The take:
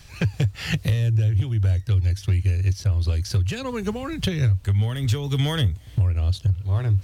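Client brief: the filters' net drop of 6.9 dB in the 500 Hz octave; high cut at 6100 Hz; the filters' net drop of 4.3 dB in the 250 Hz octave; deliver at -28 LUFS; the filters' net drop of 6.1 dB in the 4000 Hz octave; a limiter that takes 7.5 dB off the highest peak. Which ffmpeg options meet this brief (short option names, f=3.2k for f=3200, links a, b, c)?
-af "lowpass=6.1k,equalizer=f=250:t=o:g=-7,equalizer=f=500:t=o:g=-6,equalizer=f=4k:t=o:g=-7.5,volume=0.5dB,alimiter=limit=-20.5dB:level=0:latency=1"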